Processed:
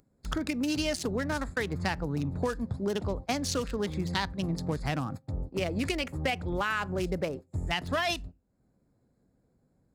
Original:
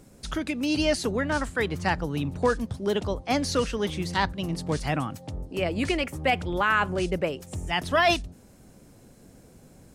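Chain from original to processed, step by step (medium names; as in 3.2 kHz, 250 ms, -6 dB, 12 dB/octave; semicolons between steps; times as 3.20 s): local Wiener filter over 15 samples; high-pass 54 Hz 6 dB/octave; upward compressor, threshold -36 dBFS; bass shelf 140 Hz +6.5 dB; gate -34 dBFS, range -27 dB; treble shelf 3 kHz +11.5 dB; on a send at -23.5 dB: reverberation RT60 0.25 s, pre-delay 4 ms; on the sum: compression 5:1, threshold -27 dBFS, peak gain reduction 11.5 dB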